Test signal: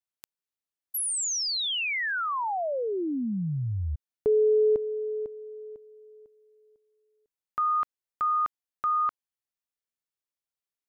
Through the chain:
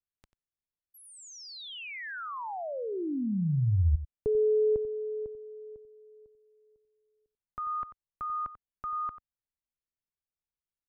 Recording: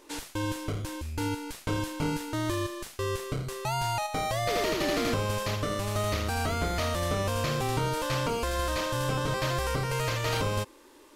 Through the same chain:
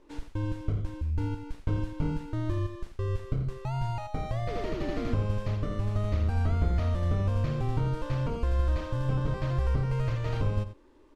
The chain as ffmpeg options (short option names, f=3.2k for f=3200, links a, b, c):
-af "aemphasis=mode=reproduction:type=riaa,aecho=1:1:91:0.224,volume=-8.5dB"